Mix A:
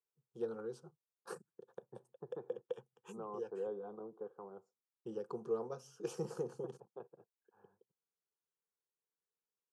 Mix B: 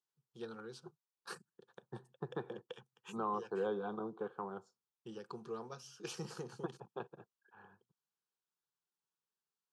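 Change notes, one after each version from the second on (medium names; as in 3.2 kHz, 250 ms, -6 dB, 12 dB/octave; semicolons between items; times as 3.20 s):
second voice +11.5 dB; master: add graphic EQ 500/2000/4000 Hz -9/+7/+11 dB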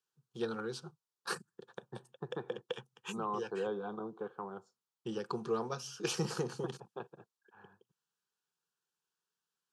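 first voice +9.5 dB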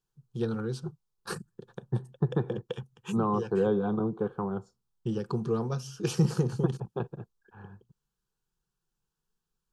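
second voice +6.0 dB; master: remove frequency weighting A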